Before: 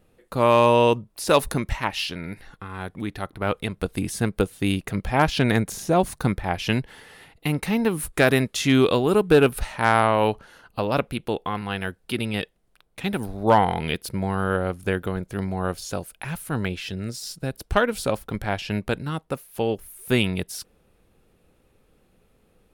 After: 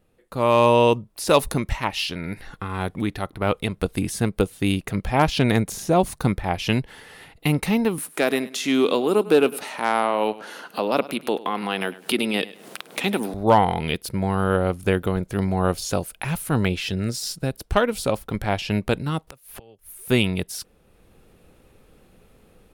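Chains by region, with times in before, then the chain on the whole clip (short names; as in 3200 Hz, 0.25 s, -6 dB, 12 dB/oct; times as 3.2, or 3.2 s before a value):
7.98–13.34 HPF 210 Hz 24 dB/oct + upward compressor, threshold -23 dBFS + feedback echo 0.102 s, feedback 30%, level -18 dB
19.27–19.89 flipped gate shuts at -26 dBFS, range -26 dB + bell 260 Hz -4.5 dB 1.1 oct + three-band squash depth 100%
whole clip: AGC; dynamic EQ 1600 Hz, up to -5 dB, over -36 dBFS, Q 3.3; gain -4 dB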